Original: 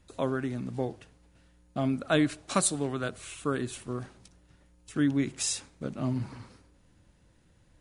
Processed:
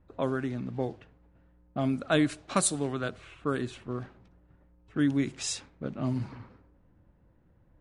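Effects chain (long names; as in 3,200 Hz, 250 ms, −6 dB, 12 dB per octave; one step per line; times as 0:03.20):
low-pass that shuts in the quiet parts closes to 1,200 Hz, open at −23.5 dBFS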